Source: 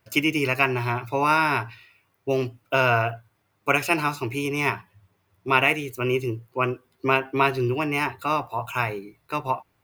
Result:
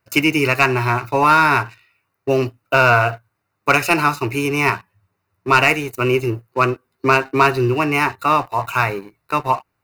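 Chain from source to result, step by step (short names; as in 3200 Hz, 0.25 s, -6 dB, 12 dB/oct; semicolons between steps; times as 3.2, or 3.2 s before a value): bell 1300 Hz +4.5 dB 0.7 oct; sample leveller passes 2; Butterworth band-stop 3300 Hz, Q 7.2; gain -1 dB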